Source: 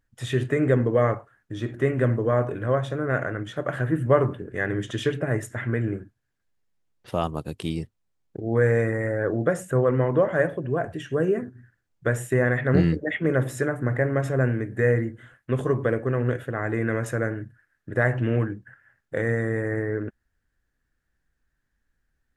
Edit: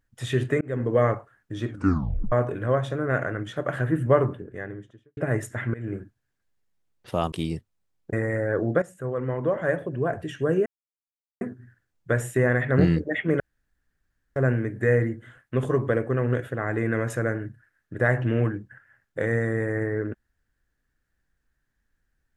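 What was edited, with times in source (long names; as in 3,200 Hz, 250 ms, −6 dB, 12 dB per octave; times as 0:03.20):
0:00.61–0:00.96: fade in
0:01.68: tape stop 0.64 s
0:04.02–0:05.17: fade out and dull
0:05.74–0:05.99: fade in, from −21 dB
0:07.32–0:07.58: remove
0:08.39–0:08.84: remove
0:09.53–0:10.81: fade in, from −14 dB
0:11.37: splice in silence 0.75 s
0:13.36–0:14.32: fill with room tone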